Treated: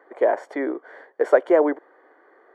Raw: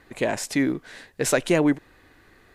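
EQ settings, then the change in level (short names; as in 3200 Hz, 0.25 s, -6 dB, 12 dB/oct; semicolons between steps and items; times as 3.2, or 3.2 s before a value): polynomial smoothing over 41 samples; HPF 380 Hz 24 dB/oct; bell 550 Hz +11.5 dB 2.9 oct; -4.0 dB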